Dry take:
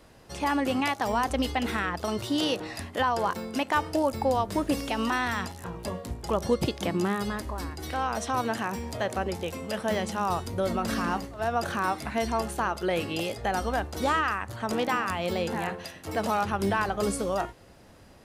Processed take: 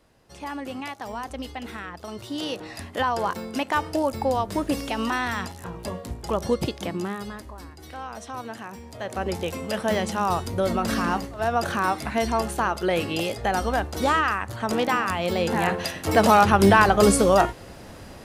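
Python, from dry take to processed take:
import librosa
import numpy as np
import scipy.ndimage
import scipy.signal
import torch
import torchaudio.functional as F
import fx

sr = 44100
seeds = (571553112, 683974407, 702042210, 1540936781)

y = fx.gain(x, sr, db=fx.line((2.05, -7.0), (2.98, 1.5), (6.53, 1.5), (7.6, -7.0), (8.91, -7.0), (9.31, 4.0), (15.34, 4.0), (15.86, 11.0)))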